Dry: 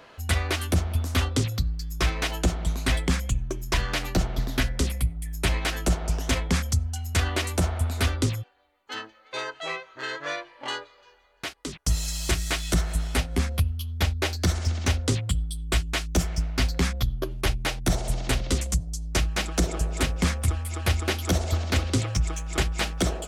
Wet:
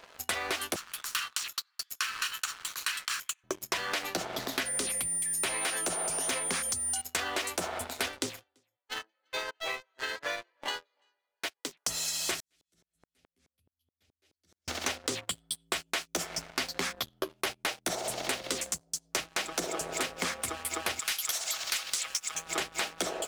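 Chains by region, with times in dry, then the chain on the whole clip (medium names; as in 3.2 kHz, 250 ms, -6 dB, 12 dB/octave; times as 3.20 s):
0.76–3.44 s: comb filter that takes the minimum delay 0.7 ms + steep high-pass 1.1 kHz
4.65–7.00 s: upward compressor, threshold -23 dBFS + whistle 9.2 kHz -31 dBFS
7.79–11.78 s: peaking EQ 1.2 kHz -5.5 dB 0.26 oct + delay 337 ms -18.5 dB + upward expansion, over -45 dBFS
12.40–14.68 s: amplifier tone stack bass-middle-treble 10-0-1 + hum notches 60/120/180/240/300/360/420 Hz + sawtooth tremolo in dB swelling 4.7 Hz, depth 36 dB
20.99–22.35 s: high-pass 1.3 kHz + treble shelf 5.1 kHz +11.5 dB
whole clip: high-pass 410 Hz 12 dB/octave; waveshaping leveller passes 3; compression, threshold -27 dBFS; trim -3 dB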